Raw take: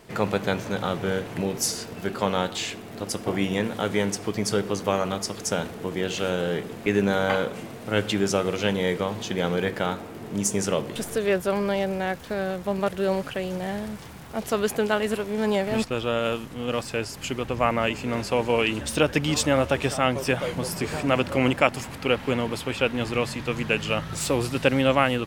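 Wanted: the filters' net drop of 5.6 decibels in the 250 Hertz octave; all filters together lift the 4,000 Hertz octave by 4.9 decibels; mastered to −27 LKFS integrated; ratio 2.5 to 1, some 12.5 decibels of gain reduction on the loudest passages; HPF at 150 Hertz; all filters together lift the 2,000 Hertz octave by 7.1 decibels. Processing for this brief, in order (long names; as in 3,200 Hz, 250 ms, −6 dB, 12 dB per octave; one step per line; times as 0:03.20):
high-pass filter 150 Hz
parametric band 250 Hz −6.5 dB
parametric band 2,000 Hz +8.5 dB
parametric band 4,000 Hz +3 dB
downward compressor 2.5 to 1, threshold −31 dBFS
level +5 dB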